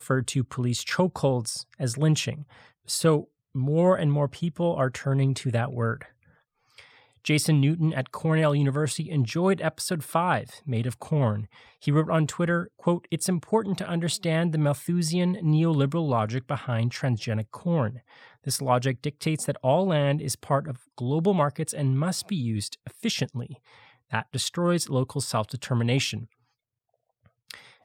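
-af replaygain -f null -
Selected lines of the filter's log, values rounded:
track_gain = +6.9 dB
track_peak = 0.286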